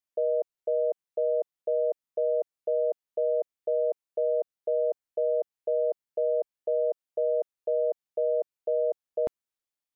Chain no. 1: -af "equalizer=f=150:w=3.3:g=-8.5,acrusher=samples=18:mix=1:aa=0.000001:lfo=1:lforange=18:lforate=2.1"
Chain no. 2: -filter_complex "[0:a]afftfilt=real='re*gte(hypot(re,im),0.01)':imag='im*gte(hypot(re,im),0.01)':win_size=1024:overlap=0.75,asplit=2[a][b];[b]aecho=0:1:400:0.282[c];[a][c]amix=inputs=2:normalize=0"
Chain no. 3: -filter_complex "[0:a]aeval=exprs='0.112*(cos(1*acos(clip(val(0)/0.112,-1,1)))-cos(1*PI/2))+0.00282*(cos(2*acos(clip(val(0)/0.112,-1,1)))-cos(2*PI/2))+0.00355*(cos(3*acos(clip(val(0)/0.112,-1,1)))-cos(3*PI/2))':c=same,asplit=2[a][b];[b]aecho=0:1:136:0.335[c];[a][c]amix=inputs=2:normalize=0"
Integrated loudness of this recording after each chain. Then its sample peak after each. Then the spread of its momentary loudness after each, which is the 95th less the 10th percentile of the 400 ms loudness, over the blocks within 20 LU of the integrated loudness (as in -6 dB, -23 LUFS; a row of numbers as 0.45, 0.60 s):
-29.0, -28.0, -29.5 LUFS; -19.5, -17.5, -19.0 dBFS; 3, 3, 2 LU